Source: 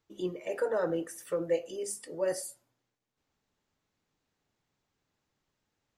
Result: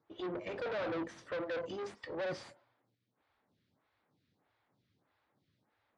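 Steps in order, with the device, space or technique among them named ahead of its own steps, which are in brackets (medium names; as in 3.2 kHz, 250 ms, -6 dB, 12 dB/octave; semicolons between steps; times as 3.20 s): vibe pedal into a guitar amplifier (lamp-driven phase shifter 1.6 Hz; valve stage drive 44 dB, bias 0.5; cabinet simulation 81–4100 Hz, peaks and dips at 110 Hz +6 dB, 420 Hz -4 dB, 2.8 kHz -5 dB); trim +10 dB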